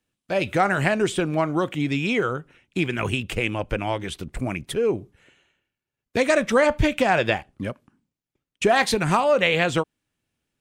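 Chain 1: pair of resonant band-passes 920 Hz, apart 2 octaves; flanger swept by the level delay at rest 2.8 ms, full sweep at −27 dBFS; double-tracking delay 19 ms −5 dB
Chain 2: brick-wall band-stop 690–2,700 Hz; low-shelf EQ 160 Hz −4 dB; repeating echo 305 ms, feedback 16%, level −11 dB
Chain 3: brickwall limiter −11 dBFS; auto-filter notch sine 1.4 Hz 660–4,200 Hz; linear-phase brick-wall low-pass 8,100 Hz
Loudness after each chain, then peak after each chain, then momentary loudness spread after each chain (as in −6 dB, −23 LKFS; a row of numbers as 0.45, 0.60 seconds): −32.5, −25.5, −25.5 LKFS; −13.5, −8.0, −11.0 dBFS; 18, 12, 9 LU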